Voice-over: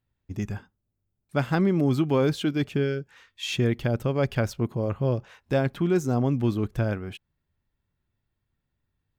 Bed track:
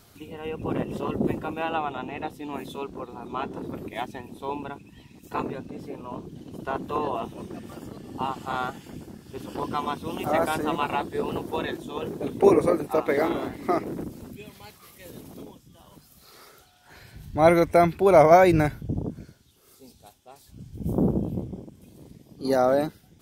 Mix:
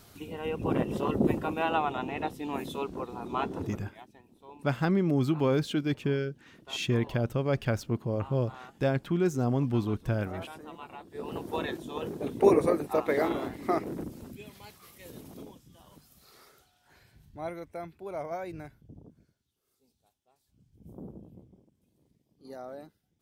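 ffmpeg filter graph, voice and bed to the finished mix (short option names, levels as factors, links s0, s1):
-filter_complex "[0:a]adelay=3300,volume=0.668[s0];[1:a]volume=5.62,afade=t=out:st=3.52:d=0.41:silence=0.11885,afade=t=in:st=11.05:d=0.48:silence=0.177828,afade=t=out:st=15.74:d=1.78:silence=0.125893[s1];[s0][s1]amix=inputs=2:normalize=0"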